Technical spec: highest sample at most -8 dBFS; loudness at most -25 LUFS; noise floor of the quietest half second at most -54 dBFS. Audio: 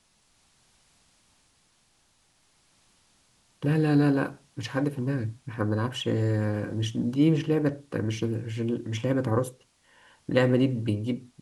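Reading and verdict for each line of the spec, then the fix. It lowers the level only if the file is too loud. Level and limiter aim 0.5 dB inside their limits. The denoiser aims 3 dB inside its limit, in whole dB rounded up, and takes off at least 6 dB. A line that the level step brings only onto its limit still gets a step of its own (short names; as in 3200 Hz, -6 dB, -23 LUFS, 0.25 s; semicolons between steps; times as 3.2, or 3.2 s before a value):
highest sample -9.0 dBFS: OK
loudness -27.0 LUFS: OK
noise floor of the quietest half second -66 dBFS: OK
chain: none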